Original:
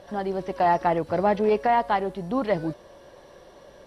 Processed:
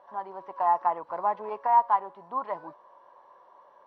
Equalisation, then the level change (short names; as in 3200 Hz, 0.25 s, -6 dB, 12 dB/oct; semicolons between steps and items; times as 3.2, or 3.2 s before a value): band-pass 1000 Hz, Q 7.2; +7.0 dB